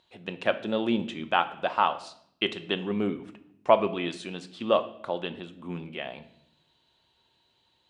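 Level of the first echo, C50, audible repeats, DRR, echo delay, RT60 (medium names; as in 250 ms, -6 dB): no echo, 14.5 dB, no echo, 9.5 dB, no echo, 0.70 s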